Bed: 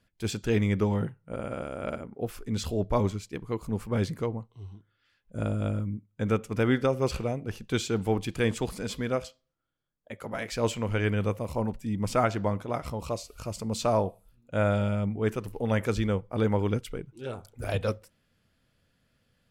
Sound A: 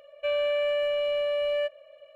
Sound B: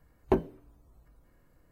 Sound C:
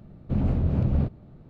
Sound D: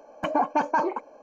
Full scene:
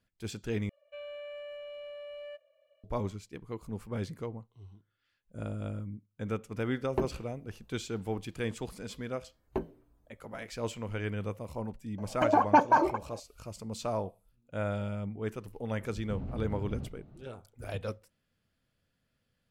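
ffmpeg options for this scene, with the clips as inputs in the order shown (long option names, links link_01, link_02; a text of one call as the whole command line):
ffmpeg -i bed.wav -i cue0.wav -i cue1.wav -i cue2.wav -i cue3.wav -filter_complex "[2:a]asplit=2[link_01][link_02];[0:a]volume=-8dB[link_03];[4:a]aphaser=in_gain=1:out_gain=1:delay=3.4:decay=0.43:speed=1.7:type=sinusoidal[link_04];[3:a]acompressor=threshold=-29dB:ratio=6:attack=3.2:release=140:knee=1:detection=peak[link_05];[link_03]asplit=2[link_06][link_07];[link_06]atrim=end=0.694[link_08];[1:a]atrim=end=2.15,asetpts=PTS-STARTPTS,volume=-17dB[link_09];[link_07]atrim=start=2.836[link_10];[link_01]atrim=end=1.71,asetpts=PTS-STARTPTS,volume=-5.5dB,afade=type=in:duration=0.004:curve=hsin,afade=type=out:start_time=1.706:duration=0.004:curve=hsin,adelay=293706S[link_11];[link_02]atrim=end=1.71,asetpts=PTS-STARTPTS,volume=-8.5dB,afade=type=in:duration=0.004:curve=hsin,afade=type=out:start_time=1.706:duration=0.004:curve=hsin,adelay=9240[link_12];[link_04]atrim=end=1.22,asetpts=PTS-STARTPTS,volume=-1.5dB,afade=type=in:duration=0.004:curve=hsin,afade=type=out:start_time=1.216:duration=0.004:curve=hsin,adelay=11980[link_13];[link_05]atrim=end=1.49,asetpts=PTS-STARTPTS,volume=-5.5dB,afade=type=in:duration=0.004:curve=hsin,afade=type=out:start_time=1.486:duration=0.004:curve=hsin,adelay=15800[link_14];[link_08][link_09]acrossfade=duration=0.004:curve1=hsin:curve2=hsin[link_15];[link_15][link_10]acrossfade=duration=0.004:curve1=hsin:curve2=hsin[link_16];[link_16][link_11][link_12][link_13][link_14]amix=inputs=5:normalize=0" out.wav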